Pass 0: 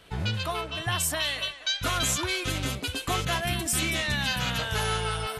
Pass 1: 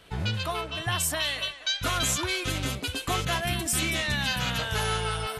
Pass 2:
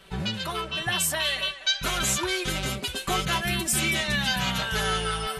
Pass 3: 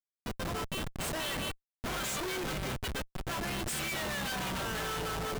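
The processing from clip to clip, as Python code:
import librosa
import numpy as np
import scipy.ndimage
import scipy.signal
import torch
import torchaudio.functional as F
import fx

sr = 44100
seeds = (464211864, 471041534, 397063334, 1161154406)

y1 = x
y2 = y1 + 0.76 * np.pad(y1, (int(5.2 * sr / 1000.0), 0))[:len(y1)]
y3 = fx.auto_swell(y2, sr, attack_ms=337.0)
y3 = fx.low_shelf(y3, sr, hz=260.0, db=-7.0)
y3 = fx.schmitt(y3, sr, flips_db=-29.5)
y3 = y3 * 10.0 ** (-5.5 / 20.0)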